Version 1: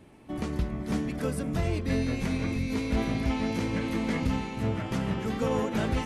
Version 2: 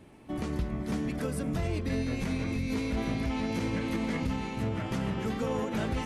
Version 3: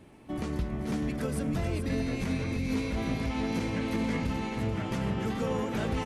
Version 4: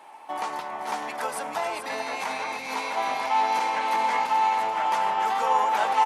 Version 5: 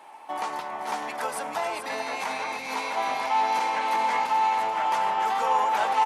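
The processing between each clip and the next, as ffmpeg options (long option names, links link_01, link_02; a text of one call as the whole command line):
ffmpeg -i in.wav -af "alimiter=limit=-22dB:level=0:latency=1:release=92" out.wav
ffmpeg -i in.wav -af "aecho=1:1:434:0.376" out.wav
ffmpeg -i in.wav -af "highpass=frequency=860:width_type=q:width=5.4,volume=6.5dB" out.wav
ffmpeg -i in.wav -af "asoftclip=type=tanh:threshold=-12.5dB" out.wav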